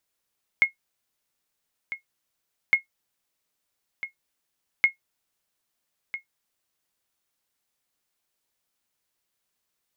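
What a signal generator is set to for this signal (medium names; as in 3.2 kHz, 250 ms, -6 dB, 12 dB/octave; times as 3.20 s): sonar ping 2.16 kHz, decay 0.12 s, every 2.11 s, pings 3, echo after 1.30 s, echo -14 dB -9 dBFS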